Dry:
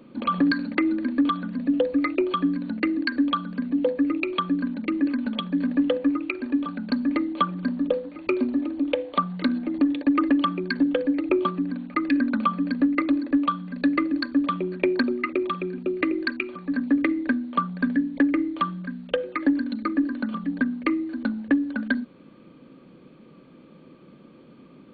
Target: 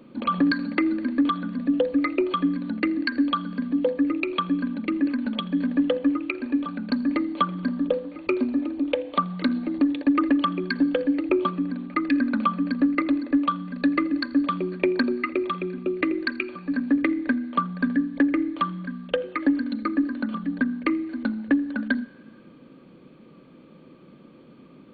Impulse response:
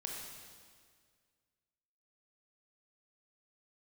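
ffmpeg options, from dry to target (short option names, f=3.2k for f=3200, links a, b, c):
-filter_complex "[0:a]asplit=2[a][b];[1:a]atrim=start_sample=2205,adelay=83[c];[b][c]afir=irnorm=-1:irlink=0,volume=-20dB[d];[a][d]amix=inputs=2:normalize=0"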